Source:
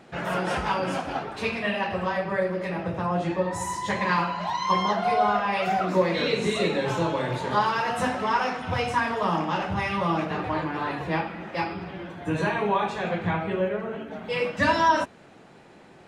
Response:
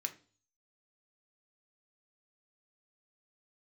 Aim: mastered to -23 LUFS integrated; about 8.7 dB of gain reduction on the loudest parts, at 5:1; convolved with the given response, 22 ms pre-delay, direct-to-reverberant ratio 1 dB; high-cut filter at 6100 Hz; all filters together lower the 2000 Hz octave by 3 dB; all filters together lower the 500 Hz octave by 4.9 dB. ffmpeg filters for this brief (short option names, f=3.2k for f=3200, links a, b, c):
-filter_complex "[0:a]lowpass=6.1k,equalizer=f=500:t=o:g=-6,equalizer=f=2k:t=o:g=-3.5,acompressor=threshold=-28dB:ratio=5,asplit=2[a][b];[1:a]atrim=start_sample=2205,adelay=22[c];[b][c]afir=irnorm=-1:irlink=0,volume=-0.5dB[d];[a][d]amix=inputs=2:normalize=0,volume=8dB"